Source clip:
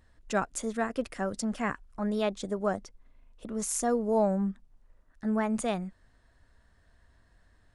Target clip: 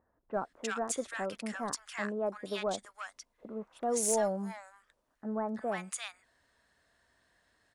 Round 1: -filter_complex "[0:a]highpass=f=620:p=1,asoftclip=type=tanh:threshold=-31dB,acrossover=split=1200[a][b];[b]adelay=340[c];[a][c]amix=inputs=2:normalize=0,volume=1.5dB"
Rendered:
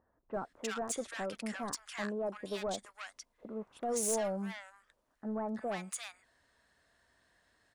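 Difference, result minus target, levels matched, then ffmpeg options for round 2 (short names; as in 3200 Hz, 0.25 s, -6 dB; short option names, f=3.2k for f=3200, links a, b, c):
soft clip: distortion +10 dB
-filter_complex "[0:a]highpass=f=620:p=1,asoftclip=type=tanh:threshold=-21.5dB,acrossover=split=1200[a][b];[b]adelay=340[c];[a][c]amix=inputs=2:normalize=0,volume=1.5dB"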